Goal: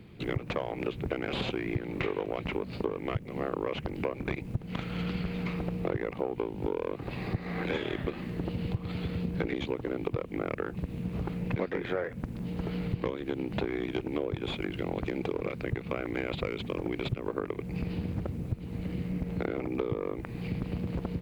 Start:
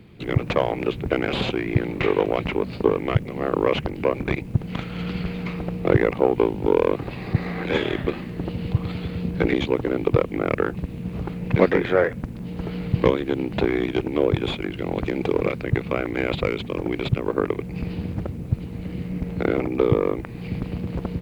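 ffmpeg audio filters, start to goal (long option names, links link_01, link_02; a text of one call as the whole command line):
ffmpeg -i in.wav -af "acompressor=threshold=-25dB:ratio=6,volume=-3dB" out.wav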